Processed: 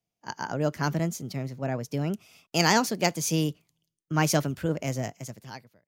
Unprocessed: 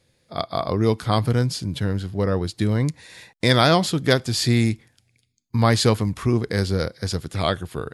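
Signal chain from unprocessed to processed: fade out at the end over 1.21 s; speed mistake 33 rpm record played at 45 rpm; three bands expanded up and down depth 40%; trim -7 dB

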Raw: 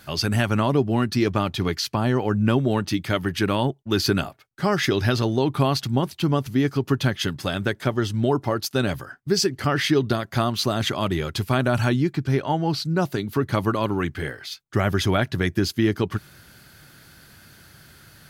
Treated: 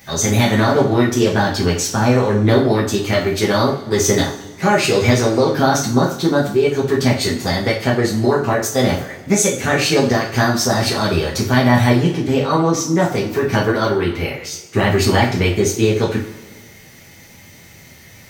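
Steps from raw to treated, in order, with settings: formant shift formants +5 st; two-slope reverb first 0.4 s, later 1.6 s, from -16 dB, DRR -3.5 dB; trim +1.5 dB

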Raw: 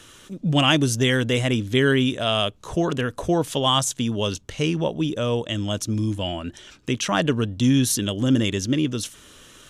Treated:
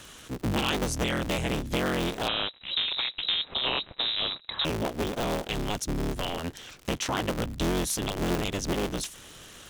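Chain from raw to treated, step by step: cycle switcher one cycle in 3, inverted; compression 2.5:1, threshold -29 dBFS, peak gain reduction 10.5 dB; crackle 96 per s -36 dBFS; 2.28–4.65 s: frequency inversion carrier 3.9 kHz

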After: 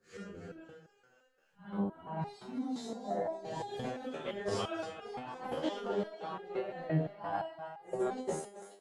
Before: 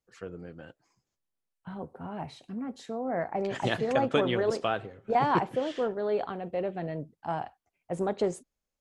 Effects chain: phase randomisation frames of 200 ms; compressor with a negative ratio -31 dBFS, ratio -0.5; 2.81–3.84 s: high-order bell 1.9 kHz -10.5 dB; thinning echo 268 ms, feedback 58%, high-pass 550 Hz, level -9.5 dB; resonator arpeggio 5.8 Hz 79–410 Hz; trim +7 dB

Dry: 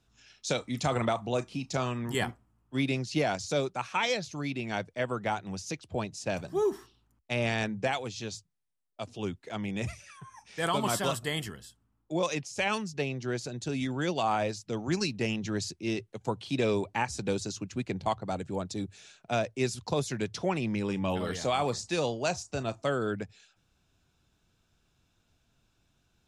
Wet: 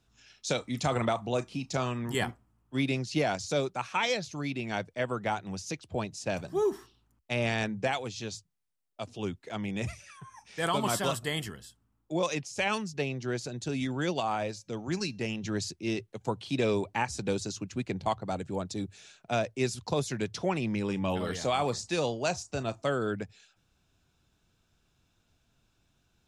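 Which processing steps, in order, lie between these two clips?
14.20–15.44 s: feedback comb 180 Hz, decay 0.31 s, harmonics odd, mix 30%

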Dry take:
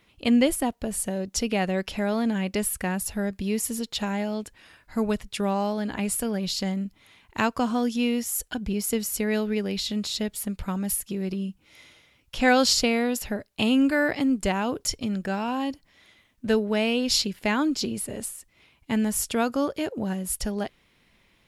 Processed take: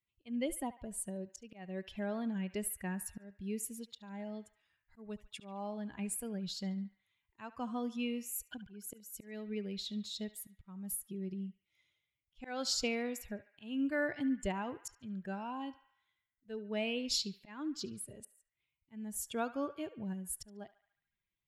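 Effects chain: expander on every frequency bin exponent 1.5; slow attack 354 ms; band-passed feedback delay 72 ms, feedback 66%, band-pass 1.7 kHz, level -14 dB; trim -8.5 dB

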